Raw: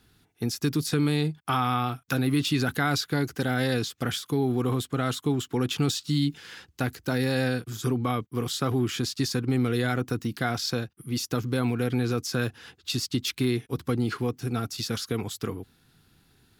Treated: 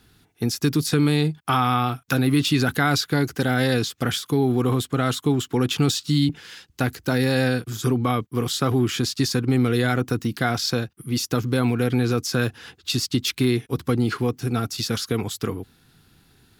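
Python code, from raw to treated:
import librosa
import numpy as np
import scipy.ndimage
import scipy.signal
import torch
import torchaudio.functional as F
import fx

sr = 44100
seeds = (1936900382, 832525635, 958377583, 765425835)

y = fx.band_widen(x, sr, depth_pct=100, at=(6.29, 6.7))
y = y * librosa.db_to_amplitude(5.0)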